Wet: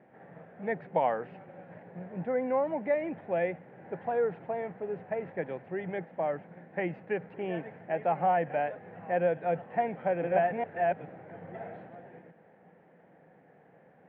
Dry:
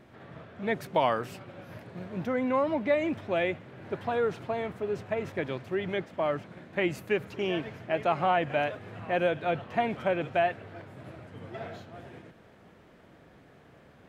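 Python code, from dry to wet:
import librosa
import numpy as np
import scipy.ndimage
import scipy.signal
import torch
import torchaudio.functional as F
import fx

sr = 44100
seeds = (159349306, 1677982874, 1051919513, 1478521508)

y = fx.reverse_delay(x, sr, ms=415, wet_db=-0.5, at=(9.81, 11.95))
y = fx.cabinet(y, sr, low_hz=160.0, low_slope=12, high_hz=2300.0, hz=(170.0, 500.0, 790.0, 1200.0, 1800.0), db=(10, 8, 10, -6, 5))
y = y * librosa.db_to_amplitude(-7.0)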